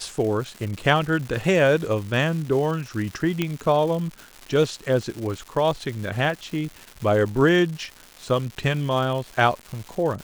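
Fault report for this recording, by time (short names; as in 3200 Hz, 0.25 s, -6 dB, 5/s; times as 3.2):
crackle 350/s -31 dBFS
3.42 pop -10 dBFS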